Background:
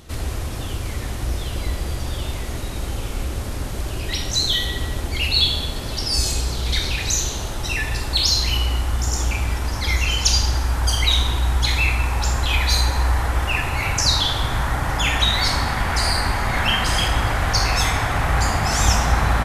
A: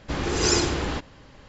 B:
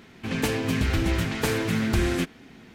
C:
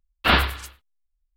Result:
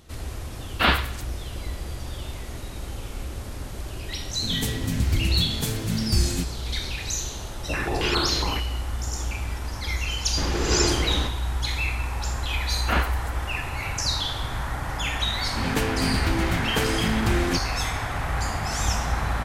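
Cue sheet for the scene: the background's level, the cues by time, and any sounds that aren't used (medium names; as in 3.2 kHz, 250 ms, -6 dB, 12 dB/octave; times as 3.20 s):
background -7.5 dB
0.55 s: add C -2 dB
4.19 s: add B -11 dB + tone controls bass +14 dB, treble +15 dB
7.60 s: add A -4 dB + step-sequenced low-pass 7.3 Hz 580–3900 Hz
10.28 s: add A -0.5 dB
12.63 s: add C -5 dB + peaking EQ 4 kHz -14 dB
15.33 s: add B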